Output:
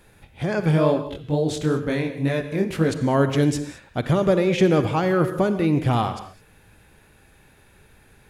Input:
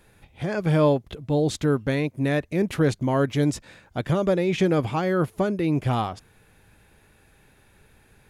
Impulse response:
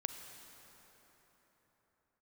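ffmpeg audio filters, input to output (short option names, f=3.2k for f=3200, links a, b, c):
-filter_complex "[0:a]asplit=3[a][b][c];[a]afade=t=out:st=0.7:d=0.02[d];[b]flanger=delay=18:depth=7.8:speed=2.1,afade=t=in:st=0.7:d=0.02,afade=t=out:st=2.91:d=0.02[e];[c]afade=t=in:st=2.91:d=0.02[f];[d][e][f]amix=inputs=3:normalize=0[g];[1:a]atrim=start_sample=2205,afade=t=out:st=0.27:d=0.01,atrim=end_sample=12348[h];[g][h]afir=irnorm=-1:irlink=0,volume=4dB"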